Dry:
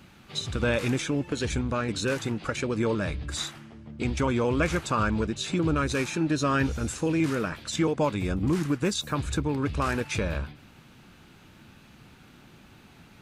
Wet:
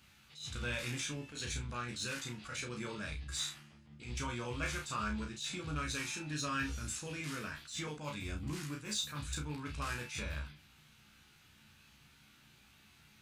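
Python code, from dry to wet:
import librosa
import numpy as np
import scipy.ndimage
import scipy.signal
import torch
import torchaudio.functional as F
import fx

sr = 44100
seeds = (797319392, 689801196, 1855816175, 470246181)

p1 = fx.tone_stack(x, sr, knobs='5-5-5')
p2 = fx.room_early_taps(p1, sr, ms=(33, 66), db=(-4.5, -16.5))
p3 = np.clip(p2, -10.0 ** (-36.0 / 20.0), 10.0 ** (-36.0 / 20.0))
p4 = p2 + F.gain(torch.from_numpy(p3), -8.0).numpy()
p5 = fx.doubler(p4, sr, ms=14.0, db=-5)
p6 = fx.attack_slew(p5, sr, db_per_s=120.0)
y = F.gain(torch.from_numpy(p6), -3.0).numpy()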